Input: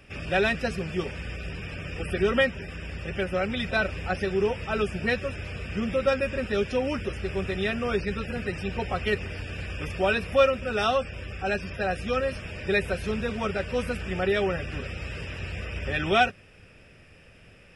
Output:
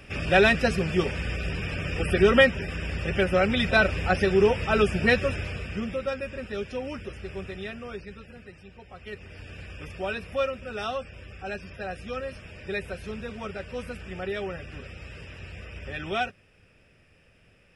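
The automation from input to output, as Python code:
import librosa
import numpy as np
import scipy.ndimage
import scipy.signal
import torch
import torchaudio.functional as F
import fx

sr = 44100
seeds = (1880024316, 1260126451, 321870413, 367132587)

y = fx.gain(x, sr, db=fx.line((5.33, 5.0), (6.08, -6.5), (7.38, -6.5), (8.83, -18.5), (9.46, -7.0)))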